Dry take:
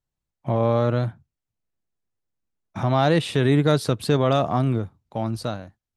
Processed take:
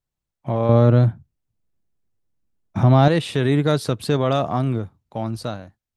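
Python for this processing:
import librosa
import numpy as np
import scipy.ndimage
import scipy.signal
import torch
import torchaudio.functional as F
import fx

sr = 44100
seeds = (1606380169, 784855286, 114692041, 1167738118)

y = fx.low_shelf(x, sr, hz=470.0, db=10.0, at=(0.69, 3.08))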